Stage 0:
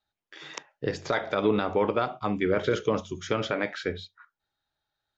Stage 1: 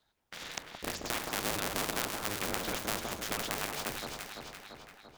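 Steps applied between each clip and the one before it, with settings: cycle switcher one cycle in 2, inverted; echo with dull and thin repeats by turns 0.17 s, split 1300 Hz, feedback 62%, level -5 dB; spectral compressor 2:1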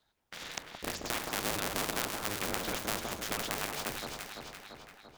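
nothing audible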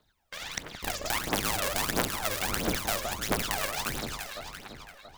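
phaser 1.5 Hz, delay 1.9 ms, feedback 68%; gain +2 dB

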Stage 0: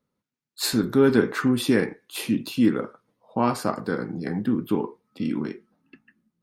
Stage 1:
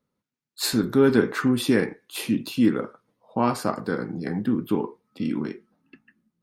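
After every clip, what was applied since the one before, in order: nothing audible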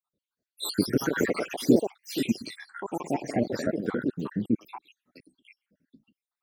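random spectral dropouts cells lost 80%; echoes that change speed 0.274 s, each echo +3 st, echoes 3

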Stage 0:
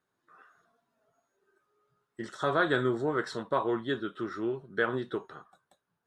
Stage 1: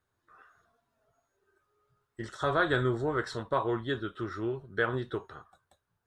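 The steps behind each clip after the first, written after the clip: resonant low shelf 120 Hz +13 dB, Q 1.5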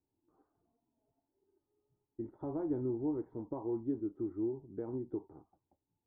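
in parallel at +2 dB: compressor, threshold -36 dBFS, peak gain reduction 14 dB; on the sum: vocal tract filter u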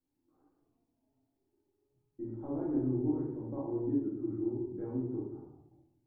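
shoebox room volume 240 m³, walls mixed, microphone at 2.2 m; gain -6.5 dB

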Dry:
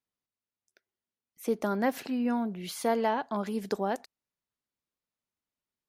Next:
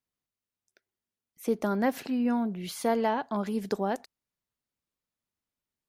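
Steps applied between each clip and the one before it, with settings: low shelf 190 Hz +5.5 dB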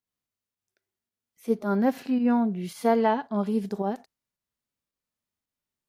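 pump 110 bpm, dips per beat 1, -9 dB, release 0.124 s; harmonic-percussive split percussive -15 dB; gain +5 dB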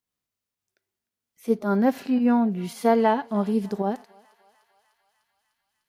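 thinning echo 0.3 s, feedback 78%, high-pass 850 Hz, level -22.5 dB; gain +2.5 dB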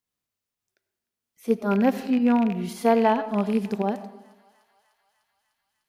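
rattling part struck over -29 dBFS, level -25 dBFS; on a send at -14.5 dB: reverb RT60 0.85 s, pre-delay 50 ms

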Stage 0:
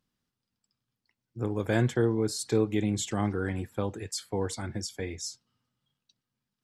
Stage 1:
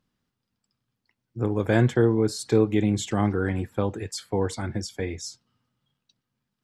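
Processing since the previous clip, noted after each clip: high shelf 4100 Hz -7.5 dB; gain +5.5 dB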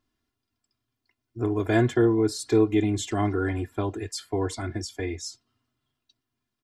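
comb 2.9 ms, depth 91%; gain -3 dB

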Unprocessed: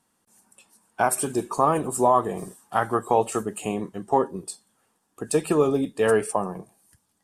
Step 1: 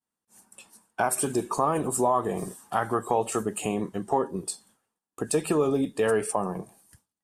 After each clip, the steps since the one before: expander -56 dBFS; in parallel at -2 dB: limiter -18.5 dBFS, peak gain reduction 11 dB; on the sum: compressor 1.5:1, threshold -31 dBFS, peak gain reduction 7 dB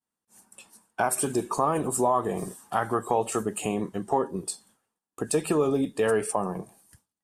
nothing audible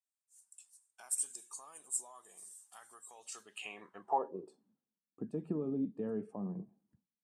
band-pass sweep 7800 Hz -> 210 Hz, 3.14–4.74; gain -4 dB

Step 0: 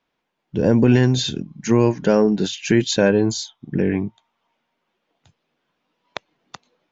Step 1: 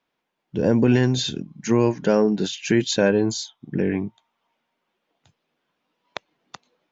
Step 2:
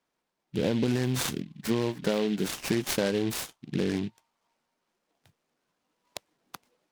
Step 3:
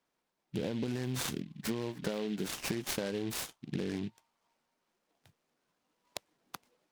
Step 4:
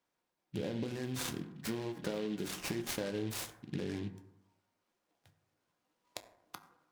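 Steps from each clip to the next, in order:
low shelf 76 Hz -8 dB; gain -2 dB
compressor, threshold -19 dBFS, peak gain reduction 7 dB; noise-modulated delay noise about 2700 Hz, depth 0.069 ms; gain -3.5 dB
compressor 6:1, threshold -30 dBFS, peak gain reduction 8.5 dB; gain -1.5 dB
reverb RT60 0.90 s, pre-delay 5 ms, DRR 6.5 dB; gain -3 dB

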